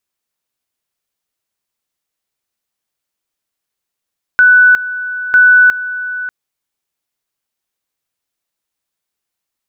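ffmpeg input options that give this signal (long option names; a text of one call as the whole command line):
ffmpeg -f lavfi -i "aevalsrc='pow(10,(-3.5-14.5*gte(mod(t,0.95),0.36))/20)*sin(2*PI*1490*t)':duration=1.9:sample_rate=44100" out.wav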